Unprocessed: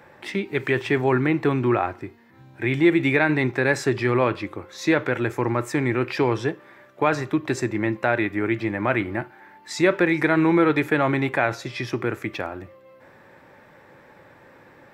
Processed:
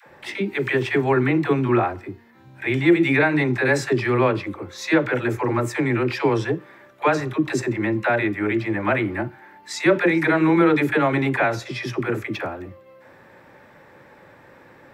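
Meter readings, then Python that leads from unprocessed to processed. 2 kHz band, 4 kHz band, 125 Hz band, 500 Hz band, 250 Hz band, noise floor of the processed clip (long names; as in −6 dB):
+1.5 dB, +1.5 dB, +1.5 dB, +1.5 dB, +1.5 dB, −50 dBFS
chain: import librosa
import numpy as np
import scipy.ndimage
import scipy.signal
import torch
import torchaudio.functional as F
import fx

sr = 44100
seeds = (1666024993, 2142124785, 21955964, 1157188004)

y = fx.dispersion(x, sr, late='lows', ms=69.0, hz=470.0)
y = F.gain(torch.from_numpy(y), 1.5).numpy()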